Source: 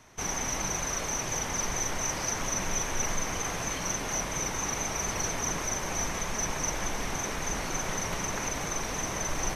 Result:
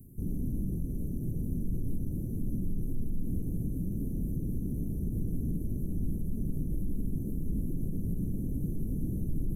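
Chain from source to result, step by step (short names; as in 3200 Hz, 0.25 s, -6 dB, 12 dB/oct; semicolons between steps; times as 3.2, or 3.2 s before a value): delta modulation 64 kbps, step -45.5 dBFS; inverse Chebyshev band-stop 1200–4100 Hz, stop band 80 dB; limiter -30.5 dBFS, peak gain reduction 7.5 dB; gain +7.5 dB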